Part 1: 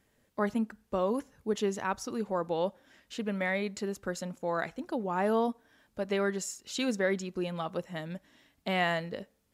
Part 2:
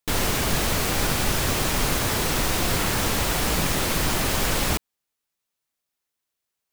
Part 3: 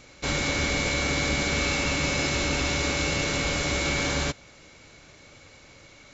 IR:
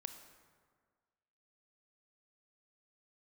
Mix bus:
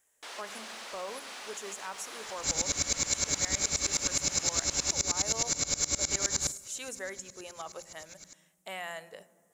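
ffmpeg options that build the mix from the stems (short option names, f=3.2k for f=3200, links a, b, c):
-filter_complex "[0:a]aexciter=amount=14.1:drive=5.7:freq=6.8k,volume=-6.5dB,asplit=2[a][b];[b]volume=-9dB[c];[1:a]highpass=f=400:p=1,asoftclip=type=tanh:threshold=-31.5dB,adelay=150,volume=-8dB,asplit=2[d][e];[e]volume=-18dB[f];[2:a]equalizer=f=4.9k:w=1.5:g=-4,aexciter=amount=6.6:drive=8.6:freq=4.4k,aeval=exprs='val(0)*pow(10,-25*if(lt(mod(-9.6*n/s,1),2*abs(-9.6)/1000),1-mod(-9.6*n/s,1)/(2*abs(-9.6)/1000),(mod(-9.6*n/s,1)-2*abs(-9.6)/1000)/(1-2*abs(-9.6)/1000))/20)':c=same,adelay=2200,volume=-3dB,asplit=2[g][h];[h]volume=-14dB[i];[a][d]amix=inputs=2:normalize=0,highpass=520,lowpass=7k,alimiter=level_in=5.5dB:limit=-24dB:level=0:latency=1:release=105,volume=-5.5dB,volume=0dB[j];[3:a]atrim=start_sample=2205[k];[c][f][i]amix=inputs=3:normalize=0[l];[l][k]afir=irnorm=-1:irlink=0[m];[g][j][m]amix=inputs=3:normalize=0,acompressor=threshold=-31dB:ratio=1.5"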